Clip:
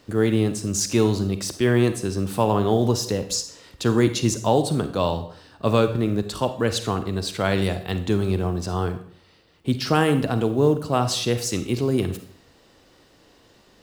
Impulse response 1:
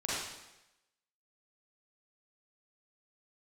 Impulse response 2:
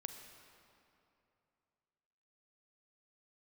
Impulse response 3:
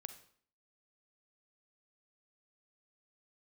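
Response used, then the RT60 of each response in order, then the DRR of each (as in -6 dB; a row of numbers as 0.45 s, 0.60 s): 3; 0.95 s, 2.8 s, 0.55 s; -8.5 dB, 6.0 dB, 9.0 dB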